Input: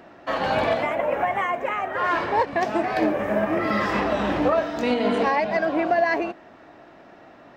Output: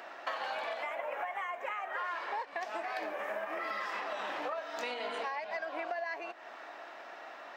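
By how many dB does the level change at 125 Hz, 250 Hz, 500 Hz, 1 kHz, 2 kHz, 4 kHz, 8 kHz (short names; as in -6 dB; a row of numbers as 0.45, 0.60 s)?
under -35 dB, -26.5 dB, -16.5 dB, -13.0 dB, -11.0 dB, -9.5 dB, n/a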